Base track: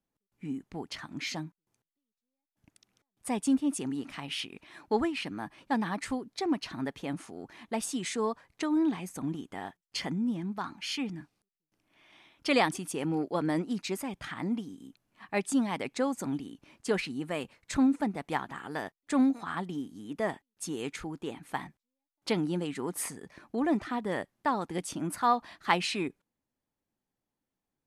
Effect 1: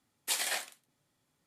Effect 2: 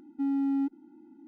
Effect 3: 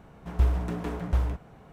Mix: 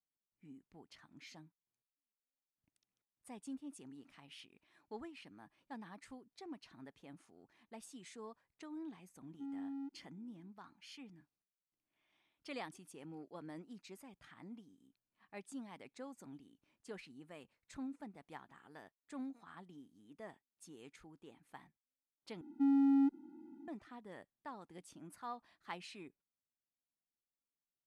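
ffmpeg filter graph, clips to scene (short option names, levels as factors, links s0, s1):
-filter_complex "[2:a]asplit=2[s0][s1];[0:a]volume=0.1,asplit=2[s2][s3];[s2]atrim=end=22.414[s4];[s1]atrim=end=1.27,asetpts=PTS-STARTPTS,volume=0.794[s5];[s3]atrim=start=23.676[s6];[s0]atrim=end=1.27,asetpts=PTS-STARTPTS,volume=0.15,afade=t=in:d=0.004:c=hsin,afade=t=out:st=1.266:d=0.004:c=hsin,adelay=9210[s7];[s4][s5]acrossfade=d=0.004:c1=hsin:c2=hsin[s8];[s8][s6]acrossfade=d=0.004:c1=hsin:c2=hsin[s9];[s9][s7]amix=inputs=2:normalize=0"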